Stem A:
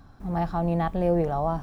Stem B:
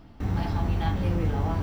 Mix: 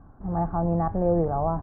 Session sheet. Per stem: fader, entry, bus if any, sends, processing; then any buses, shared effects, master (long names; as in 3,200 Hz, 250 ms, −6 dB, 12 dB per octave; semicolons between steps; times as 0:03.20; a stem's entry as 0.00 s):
+0.5 dB, 0.00 s, no send, no processing
−11.5 dB, 28 ms, no send, no processing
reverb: not used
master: low-pass filter 1,300 Hz 24 dB per octave